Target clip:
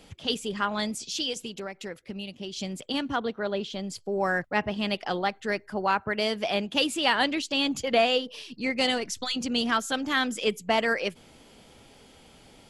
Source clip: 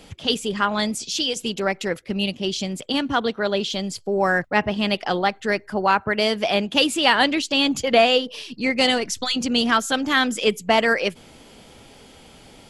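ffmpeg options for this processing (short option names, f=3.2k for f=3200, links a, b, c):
-filter_complex "[0:a]asettb=1/sr,asplit=3[a][b][c];[a]atrim=end=1.344[d];[b]atrim=start=1.34:end=2.57,asetpts=PTS-STARTPTS,afade=t=in:d=0.004:c=qsin,afade=t=out:st=1.226:d=0.004:c=qsin,acompressor=threshold=-27dB:ratio=6[e];[c]atrim=start=2.566[f];[d][e]acrossfade=d=0.004:c1=hsin:c2=qsin[g];[g][f]acrossfade=d=0.004:c1=qsin:c2=hsin,asettb=1/sr,asplit=3[h][i][j];[h]atrim=end=3.164[k];[i]atrim=start=3.16:end=3.9,asetpts=PTS-STARTPTS,afade=t=in:d=0.004:c=qsin,afade=t=out:st=0.736:d=0.004:c=qsin,highshelf=f=3.2k:g=-9.5[l];[j]atrim=start=3.896[m];[k][l]acrossfade=d=0.004:c1=hsin:c2=qsin[n];[n][m]acrossfade=d=0.004:c1=qsin:c2=hsin,volume=-6.5dB"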